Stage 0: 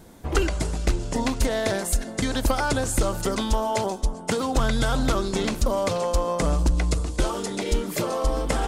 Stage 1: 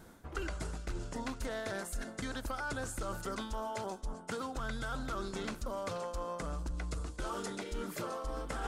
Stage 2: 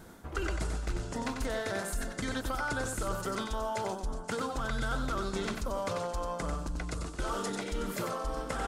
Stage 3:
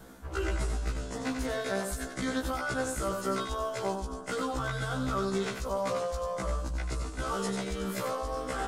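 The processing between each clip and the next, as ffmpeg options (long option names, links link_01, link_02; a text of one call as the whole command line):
ffmpeg -i in.wav -af "equalizer=frequency=1400:width_type=o:width=0.6:gain=8.5,areverse,acompressor=threshold=-28dB:ratio=6,areverse,volume=-7.5dB" out.wav
ffmpeg -i in.wav -af "aecho=1:1:93:0.501,volume=4dB" out.wav
ffmpeg -i in.wav -af "afftfilt=real='re*1.73*eq(mod(b,3),0)':imag='im*1.73*eq(mod(b,3),0)':win_size=2048:overlap=0.75,volume=3.5dB" out.wav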